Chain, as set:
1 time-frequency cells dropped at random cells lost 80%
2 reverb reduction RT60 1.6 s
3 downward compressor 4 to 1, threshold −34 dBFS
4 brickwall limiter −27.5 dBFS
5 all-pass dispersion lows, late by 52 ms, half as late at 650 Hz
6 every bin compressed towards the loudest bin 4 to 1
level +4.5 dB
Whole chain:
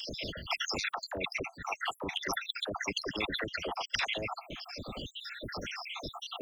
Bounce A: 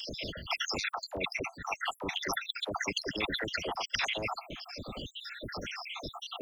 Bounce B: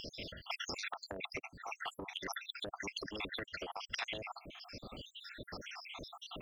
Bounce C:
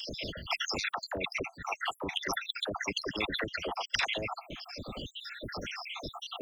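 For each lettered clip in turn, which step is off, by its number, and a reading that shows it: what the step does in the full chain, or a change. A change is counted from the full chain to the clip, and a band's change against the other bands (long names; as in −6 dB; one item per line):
3, average gain reduction 6.5 dB
5, change in integrated loudness −7.5 LU
4, change in momentary loudness spread +2 LU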